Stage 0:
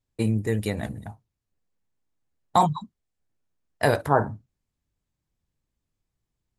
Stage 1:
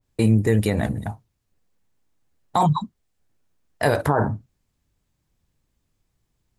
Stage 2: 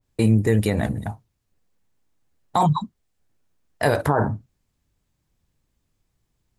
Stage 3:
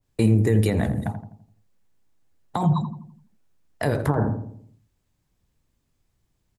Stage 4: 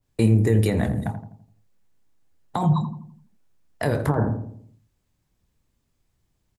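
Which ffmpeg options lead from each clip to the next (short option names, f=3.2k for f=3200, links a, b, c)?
-af "alimiter=level_in=17.5dB:limit=-1dB:release=50:level=0:latency=1,adynamicequalizer=threshold=0.0398:dfrequency=2100:dqfactor=0.7:tfrequency=2100:tqfactor=0.7:attack=5:release=100:ratio=0.375:range=2.5:mode=cutabove:tftype=highshelf,volume=-8.5dB"
-af anull
-filter_complex "[0:a]acrossover=split=410[a][b];[b]acompressor=threshold=-26dB:ratio=10[c];[a][c]amix=inputs=2:normalize=0,asplit=2[d][e];[e]adelay=84,lowpass=f=970:p=1,volume=-7.5dB,asplit=2[f][g];[g]adelay=84,lowpass=f=970:p=1,volume=0.5,asplit=2[h][i];[i]adelay=84,lowpass=f=970:p=1,volume=0.5,asplit=2[j][k];[k]adelay=84,lowpass=f=970:p=1,volume=0.5,asplit=2[l][m];[m]adelay=84,lowpass=f=970:p=1,volume=0.5,asplit=2[n][o];[o]adelay=84,lowpass=f=970:p=1,volume=0.5[p];[f][h][j][l][n][p]amix=inputs=6:normalize=0[q];[d][q]amix=inputs=2:normalize=0"
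-filter_complex "[0:a]asplit=2[a][b];[b]adelay=26,volume=-13dB[c];[a][c]amix=inputs=2:normalize=0"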